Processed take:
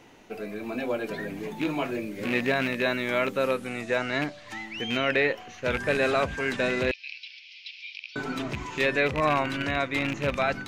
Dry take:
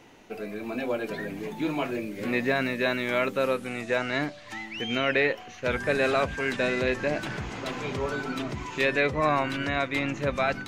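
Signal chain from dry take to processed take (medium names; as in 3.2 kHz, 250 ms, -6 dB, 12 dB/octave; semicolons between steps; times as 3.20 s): rattle on loud lows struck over -30 dBFS, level -20 dBFS; 6.91–8.16 s: Chebyshev band-pass 2.3–5.4 kHz, order 4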